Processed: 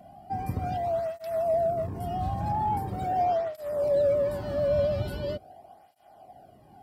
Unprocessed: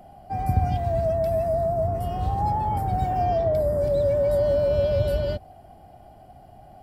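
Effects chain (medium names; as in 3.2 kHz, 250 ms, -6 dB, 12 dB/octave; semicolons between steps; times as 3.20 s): in parallel at -4 dB: hard clipper -19.5 dBFS, distortion -15 dB; on the sum: cancelling through-zero flanger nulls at 0.42 Hz, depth 2.4 ms; trim -4.5 dB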